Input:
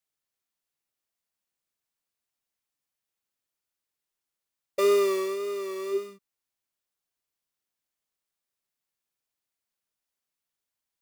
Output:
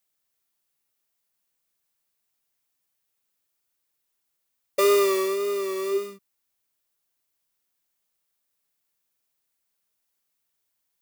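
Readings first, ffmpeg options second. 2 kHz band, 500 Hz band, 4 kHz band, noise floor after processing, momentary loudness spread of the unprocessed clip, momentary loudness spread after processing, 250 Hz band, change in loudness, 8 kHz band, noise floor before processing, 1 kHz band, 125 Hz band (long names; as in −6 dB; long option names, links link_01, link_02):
+5.0 dB, +2.5 dB, +5.5 dB, −78 dBFS, 12 LU, 11 LU, +3.0 dB, +3.0 dB, +7.0 dB, below −85 dBFS, +5.0 dB, can't be measured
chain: -filter_complex "[0:a]highshelf=frequency=11000:gain=8,acrossover=split=380|2400[link_01][link_02][link_03];[link_01]alimiter=level_in=10dB:limit=-24dB:level=0:latency=1,volume=-10dB[link_04];[link_04][link_02][link_03]amix=inputs=3:normalize=0,volume=5dB"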